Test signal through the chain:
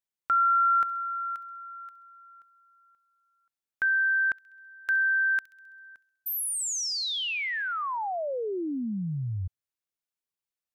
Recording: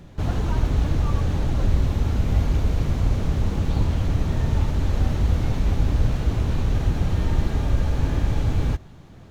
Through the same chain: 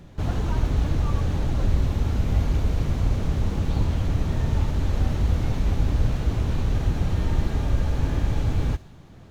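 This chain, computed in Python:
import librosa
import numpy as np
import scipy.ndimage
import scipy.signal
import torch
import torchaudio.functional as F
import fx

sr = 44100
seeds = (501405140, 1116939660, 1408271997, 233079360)

y = fx.echo_wet_highpass(x, sr, ms=66, feedback_pct=59, hz=3200.0, wet_db=-15.0)
y = y * librosa.db_to_amplitude(-1.5)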